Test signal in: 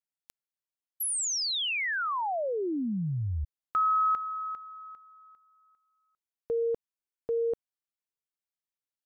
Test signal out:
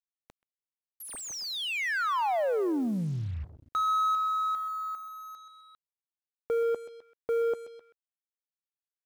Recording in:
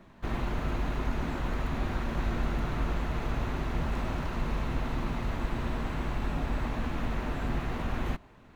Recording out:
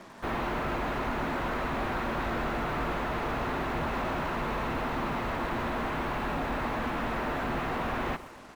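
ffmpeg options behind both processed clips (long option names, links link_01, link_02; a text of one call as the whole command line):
ffmpeg -i in.wav -filter_complex "[0:a]asplit=2[link_01][link_02];[link_02]highpass=frequency=720:poles=1,volume=23dB,asoftclip=type=tanh:threshold=-17dB[link_03];[link_01][link_03]amix=inputs=2:normalize=0,lowpass=frequency=1400:poles=1,volume=-6dB,aecho=1:1:129|258|387|516:0.15|0.0718|0.0345|0.0165,acrusher=bits=7:mix=0:aa=0.5,volume=-3.5dB" out.wav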